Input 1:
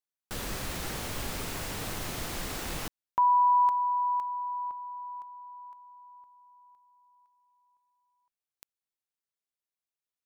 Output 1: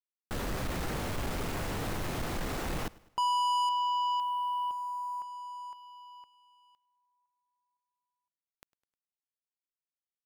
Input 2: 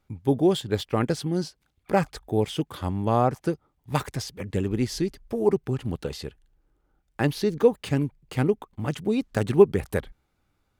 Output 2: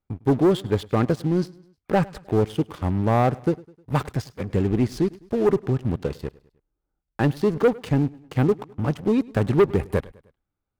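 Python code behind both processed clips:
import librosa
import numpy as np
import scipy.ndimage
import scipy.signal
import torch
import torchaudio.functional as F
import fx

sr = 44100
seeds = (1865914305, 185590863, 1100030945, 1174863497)

p1 = fx.high_shelf(x, sr, hz=2400.0, db=-10.5)
p2 = fx.leveller(p1, sr, passes=3)
p3 = p2 + fx.echo_feedback(p2, sr, ms=103, feedback_pct=49, wet_db=-22.5, dry=0)
y = F.gain(torch.from_numpy(p3), -6.0).numpy()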